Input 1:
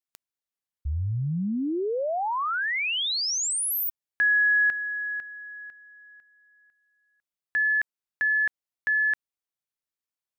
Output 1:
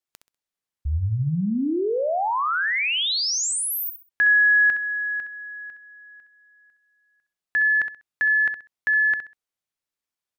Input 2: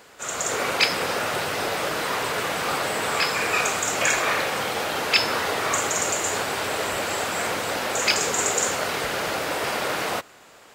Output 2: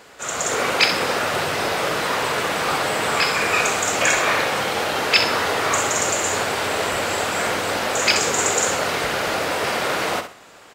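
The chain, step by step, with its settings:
high-shelf EQ 11,000 Hz −6 dB
repeating echo 65 ms, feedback 26%, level −9.5 dB
level +3.5 dB

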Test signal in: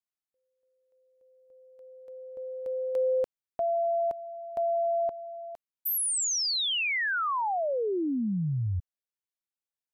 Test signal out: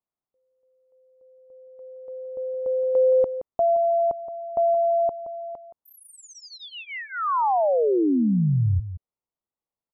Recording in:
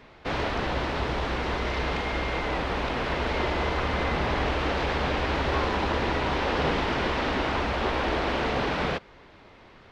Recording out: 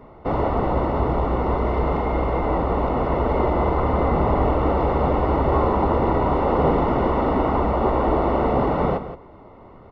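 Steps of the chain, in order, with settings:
Savitzky-Golay smoothing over 65 samples
single-tap delay 172 ms −12 dB
level +8 dB

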